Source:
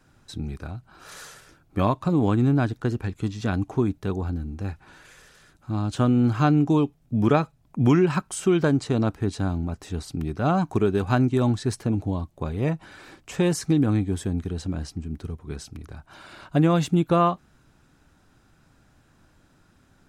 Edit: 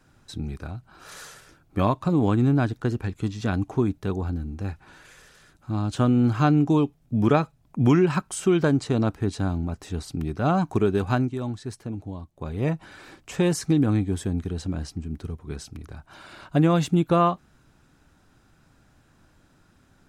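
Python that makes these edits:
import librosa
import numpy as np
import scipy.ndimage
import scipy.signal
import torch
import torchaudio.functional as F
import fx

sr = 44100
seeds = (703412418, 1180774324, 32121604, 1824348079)

y = fx.edit(x, sr, fx.fade_down_up(start_s=10.95, length_s=1.79, db=-8.5, fade_s=0.4, curve='qsin'), tone=tone)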